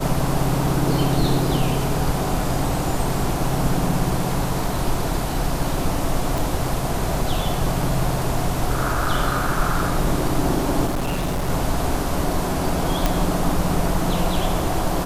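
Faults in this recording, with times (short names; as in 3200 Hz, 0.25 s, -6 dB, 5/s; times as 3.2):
6.38 pop
10.86–11.5 clipped -19.5 dBFS
13.06 pop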